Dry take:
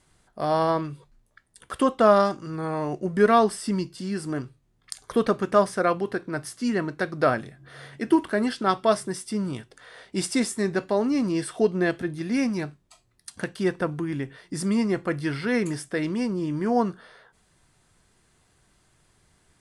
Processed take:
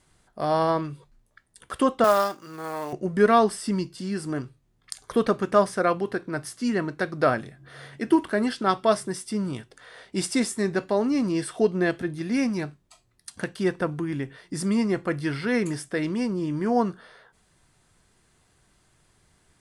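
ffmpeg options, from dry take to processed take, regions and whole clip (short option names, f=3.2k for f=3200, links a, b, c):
-filter_complex "[0:a]asettb=1/sr,asplit=3[a][b][c];[a]atrim=end=2.044[d];[b]atrim=start=2.04:end=2.93,asetpts=PTS-STARTPTS,afade=t=in:d=0.004:c=qsin,afade=t=out:st=0.886:d=0.004:c=qsin,highpass=f=640:p=1,acrusher=bits=4:mode=log:mix=0:aa=0.000001[e];[c]atrim=start=2.926[f];[d][e]acrossfade=d=0.004:c1=hsin:c2=qsin[g];[g][f]acrossfade=d=0.004:c1=qsin:c2=hsin"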